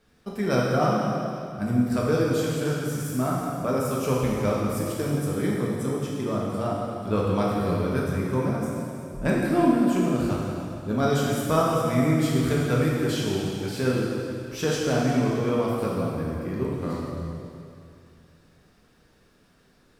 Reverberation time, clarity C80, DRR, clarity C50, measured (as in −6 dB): 2.5 s, 0.5 dB, −5.0 dB, −1.5 dB